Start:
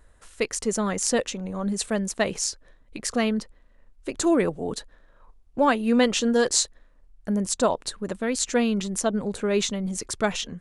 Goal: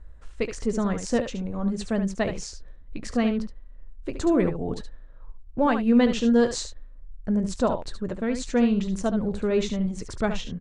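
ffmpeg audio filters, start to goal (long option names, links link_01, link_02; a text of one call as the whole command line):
ffmpeg -i in.wav -af "lowpass=frequency=9300:width=0.5412,lowpass=frequency=9300:width=1.3066,aemphasis=mode=reproduction:type=bsi,aecho=1:1:17|72:0.168|0.355,volume=-3.5dB" out.wav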